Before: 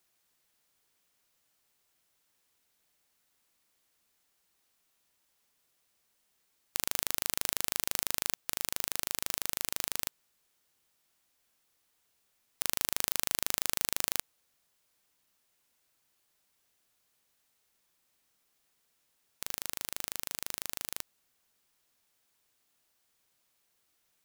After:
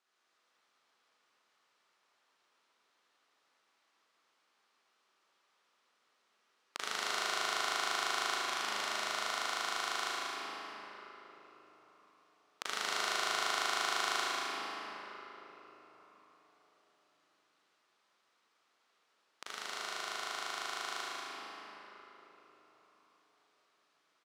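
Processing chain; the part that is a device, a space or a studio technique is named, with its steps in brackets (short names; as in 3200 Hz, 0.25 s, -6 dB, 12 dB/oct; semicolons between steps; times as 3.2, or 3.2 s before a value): station announcement (BPF 340–4700 Hz; bell 1200 Hz +7 dB 0.51 oct; loudspeakers at several distances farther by 65 m -7 dB, 89 m -11 dB; reverb RT60 4.5 s, pre-delay 34 ms, DRR -6.5 dB); gain -3.5 dB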